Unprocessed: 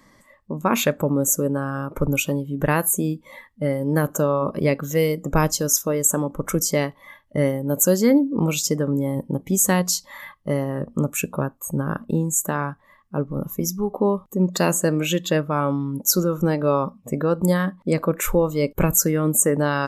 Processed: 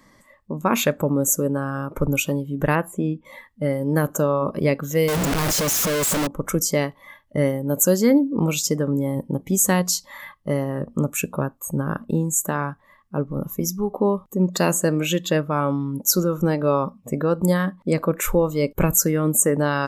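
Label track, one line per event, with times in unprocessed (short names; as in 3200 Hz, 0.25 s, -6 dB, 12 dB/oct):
2.750000	3.250000	polynomial smoothing over 25 samples
5.080000	6.270000	infinite clipping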